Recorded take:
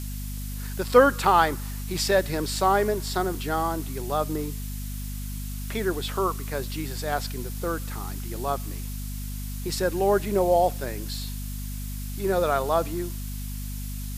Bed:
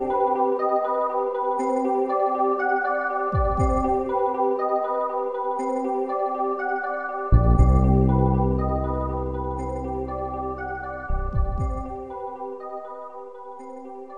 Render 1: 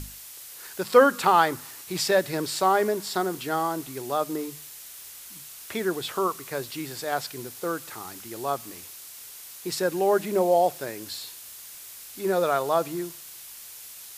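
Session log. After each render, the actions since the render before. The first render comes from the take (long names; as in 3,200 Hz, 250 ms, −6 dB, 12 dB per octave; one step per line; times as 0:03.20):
mains-hum notches 50/100/150/200/250 Hz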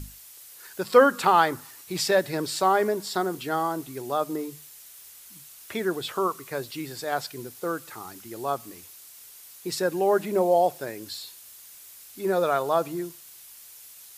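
broadband denoise 6 dB, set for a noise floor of −44 dBFS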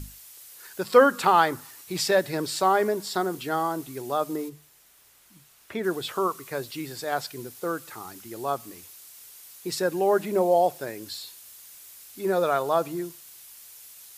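0:04.48–0:05.83: high-shelf EQ 2,200 Hz → 3,700 Hz −11.5 dB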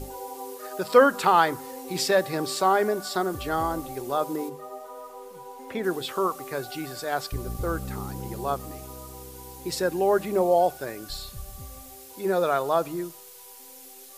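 mix in bed −16.5 dB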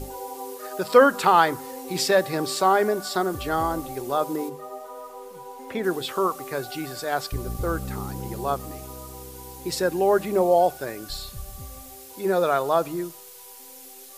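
level +2 dB
brickwall limiter −2 dBFS, peak gain reduction 1 dB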